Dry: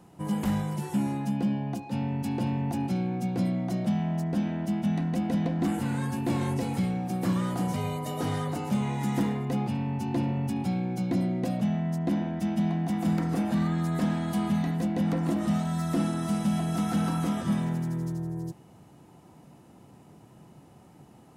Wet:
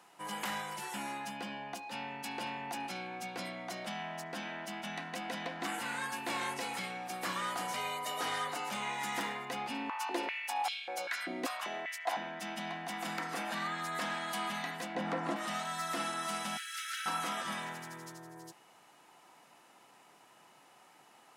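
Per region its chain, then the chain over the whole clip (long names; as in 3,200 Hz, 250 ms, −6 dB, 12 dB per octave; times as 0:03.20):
0:09.70–0:12.17: high-shelf EQ 7,000 Hz +6 dB + high-pass on a step sequencer 5.1 Hz 270–3,100 Hz
0:14.95–0:15.36: low-pass filter 9,300 Hz + tilt shelving filter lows +6.5 dB, about 1,500 Hz
0:16.57–0:17.06: mu-law and A-law mismatch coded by A + Butterworth high-pass 1,400 Hz 72 dB per octave
whole clip: high-pass filter 1,500 Hz 12 dB per octave; spectral tilt −2.5 dB per octave; level +8.5 dB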